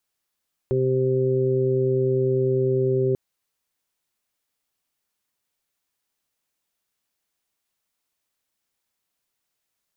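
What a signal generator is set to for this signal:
steady harmonic partials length 2.44 s, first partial 130 Hz, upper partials −9/3.5/−7 dB, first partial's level −23.5 dB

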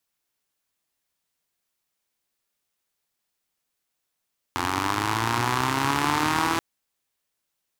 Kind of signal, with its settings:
pulse-train model of a four-cylinder engine, changing speed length 2.03 s, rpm 2,600, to 5,000, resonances 120/290/940 Hz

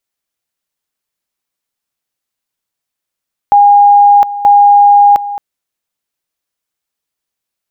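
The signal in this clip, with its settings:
tone at two levels in turn 815 Hz −2 dBFS, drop 14.5 dB, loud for 0.71 s, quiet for 0.22 s, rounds 2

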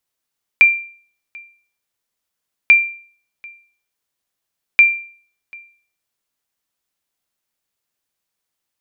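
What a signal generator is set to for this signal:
ping with an echo 2,370 Hz, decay 0.47 s, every 2.09 s, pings 3, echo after 0.74 s, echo −27 dB −2 dBFS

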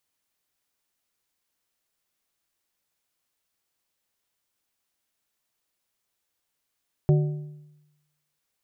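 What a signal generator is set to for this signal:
struck metal plate, length 1.30 s, lowest mode 149 Hz, modes 4, decay 0.99 s, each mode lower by 8 dB, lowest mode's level −14 dB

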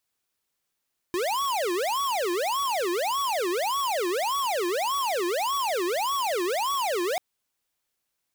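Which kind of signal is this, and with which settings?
siren wail 344–1,130 Hz 1.7 per second square −26.5 dBFS 6.04 s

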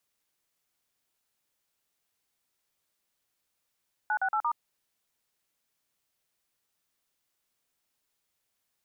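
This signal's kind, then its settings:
touch tones "968*", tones 72 ms, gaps 43 ms, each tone −27.5 dBFS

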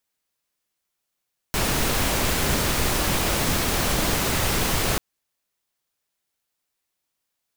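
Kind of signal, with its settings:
noise pink, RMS −22.5 dBFS 3.44 s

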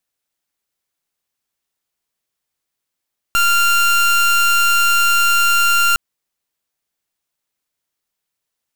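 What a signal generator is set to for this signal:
pulse wave 1,390 Hz, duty 28% −13.5 dBFS 2.61 s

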